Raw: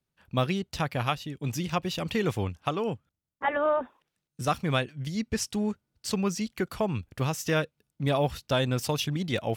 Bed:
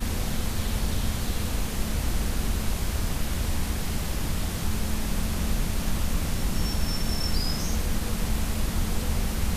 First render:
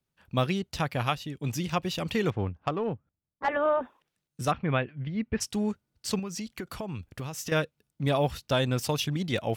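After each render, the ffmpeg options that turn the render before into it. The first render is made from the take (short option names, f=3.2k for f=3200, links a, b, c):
-filter_complex "[0:a]asettb=1/sr,asplit=3[a][b][c];[a]atrim=end=2.304[d];[b]atrim=start=2.3:end=3.49,asetpts=PTS-STARTPTS,afade=t=in:d=0.004:c=qsin,afade=t=out:st=1.186:d=0.004:c=qsin,adynamicsmooth=sensitivity=1:basefreq=1.5k[e];[c]atrim=start=3.486[f];[d][e]acrossfade=d=0.004:c1=hsin:c2=qsin[g];[g][f]acrossfade=d=0.004:c1=qsin:c2=hsin,asplit=3[h][i][j];[h]afade=t=out:st=4.5:d=0.02[k];[i]lowpass=f=2.7k:w=0.5412,lowpass=f=2.7k:w=1.3066,afade=t=in:st=4.5:d=0.02,afade=t=out:st=5.4:d=0.02[l];[j]afade=t=in:st=5.4:d=0.02[m];[k][l][m]amix=inputs=3:normalize=0,asettb=1/sr,asplit=3[n][o][p];[n]atrim=end=6.194[q];[o]atrim=start=6.19:end=7.52,asetpts=PTS-STARTPTS,afade=t=in:d=0.004:c=qsin,afade=t=out:st=1.326:d=0.004:c=qsin,acompressor=threshold=-31dB:ratio=10:attack=3.2:release=140:knee=1:detection=peak[r];[p]atrim=start=7.516[s];[q][r]acrossfade=d=0.004:c1=hsin:c2=qsin[t];[t][s]acrossfade=d=0.004:c1=qsin:c2=hsin"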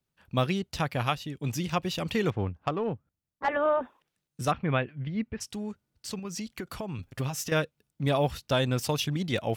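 -filter_complex "[0:a]asettb=1/sr,asplit=3[a][b][c];[a]atrim=end=5.264[d];[b]atrim=start=5.26:end=6.25,asetpts=PTS-STARTPTS,afade=t=in:d=0.004:c=qsin,afade=t=out:st=0.986:d=0.004:c=qsin,acompressor=threshold=-43dB:ratio=1.5:attack=3.2:release=140:knee=1:detection=peak[e];[c]atrim=start=6.246[f];[d][e]acrossfade=d=0.004:c1=hsin:c2=qsin[g];[g][f]acrossfade=d=0.004:c1=qsin:c2=hsin,asettb=1/sr,asplit=3[h][i][j];[h]atrim=end=6.984[k];[i]atrim=start=6.98:end=7.44,asetpts=PTS-STARTPTS,afade=t=in:d=0.004:c=qsin,afade=t=out:st=0.456:d=0.004:c=qsin,aecho=1:1:7.5:0.99,atrim=end_sample=20286[l];[j]atrim=start=7.436[m];[k][l]acrossfade=d=0.004:c1=hsin:c2=qsin[n];[n][m]acrossfade=d=0.004:c1=qsin:c2=hsin"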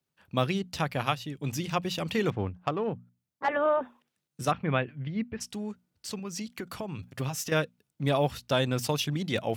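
-af "highpass=88,bandreject=f=60:t=h:w=6,bandreject=f=120:t=h:w=6,bandreject=f=180:t=h:w=6,bandreject=f=240:t=h:w=6"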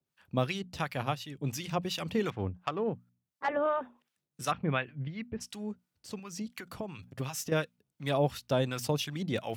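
-filter_complex "[0:a]acrossover=split=870[a][b];[a]aeval=exprs='val(0)*(1-0.7/2+0.7/2*cos(2*PI*2.8*n/s))':c=same[c];[b]aeval=exprs='val(0)*(1-0.7/2-0.7/2*cos(2*PI*2.8*n/s))':c=same[d];[c][d]amix=inputs=2:normalize=0"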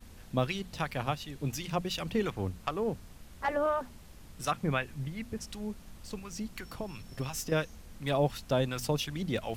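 -filter_complex "[1:a]volume=-23.5dB[a];[0:a][a]amix=inputs=2:normalize=0"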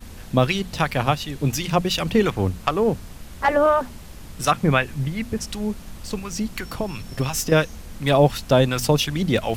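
-af "volume=12dB,alimiter=limit=-3dB:level=0:latency=1"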